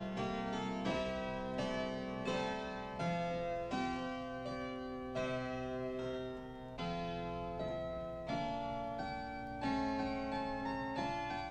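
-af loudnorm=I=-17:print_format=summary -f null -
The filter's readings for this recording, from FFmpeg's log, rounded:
Input Integrated:    -40.2 LUFS
Input True Peak:     -25.6 dBTP
Input LRA:             2.2 LU
Input Threshold:     -50.2 LUFS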